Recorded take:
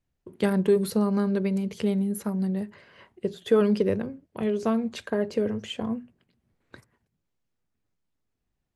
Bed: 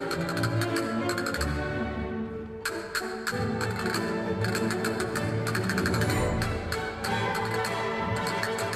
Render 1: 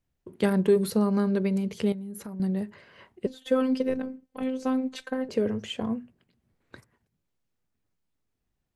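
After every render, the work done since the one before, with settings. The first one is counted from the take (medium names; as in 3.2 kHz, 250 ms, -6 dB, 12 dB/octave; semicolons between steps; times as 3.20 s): 1.92–2.40 s: compression 8:1, threshold -35 dBFS; 3.26–5.29 s: robot voice 259 Hz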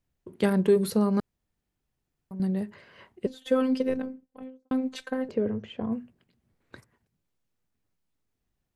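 1.20–2.31 s: room tone; 3.95–4.71 s: studio fade out; 5.31–5.92 s: tape spacing loss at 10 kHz 32 dB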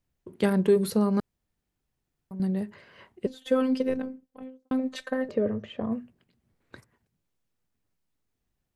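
4.79–6.01 s: small resonant body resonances 600/1200/1800/3800 Hz, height 10 dB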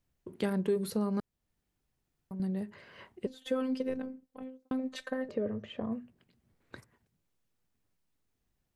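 compression 1.5:1, threshold -42 dBFS, peak gain reduction 9.5 dB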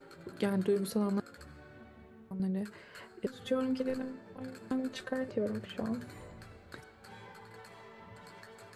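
add bed -23 dB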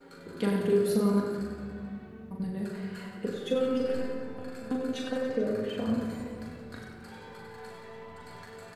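reverse bouncing-ball echo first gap 40 ms, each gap 1.4×, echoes 5; simulated room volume 3300 m³, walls mixed, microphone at 1.8 m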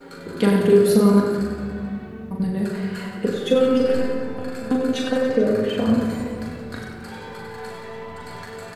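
trim +10.5 dB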